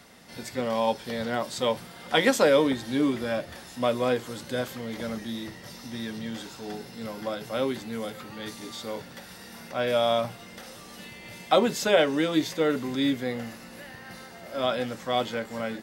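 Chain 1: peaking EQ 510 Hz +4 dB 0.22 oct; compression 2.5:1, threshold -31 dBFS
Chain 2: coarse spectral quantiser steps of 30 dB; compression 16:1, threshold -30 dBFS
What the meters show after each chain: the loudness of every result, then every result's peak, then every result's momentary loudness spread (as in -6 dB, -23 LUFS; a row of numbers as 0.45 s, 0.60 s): -34.5 LUFS, -37.0 LUFS; -15.5 dBFS, -18.5 dBFS; 12 LU, 10 LU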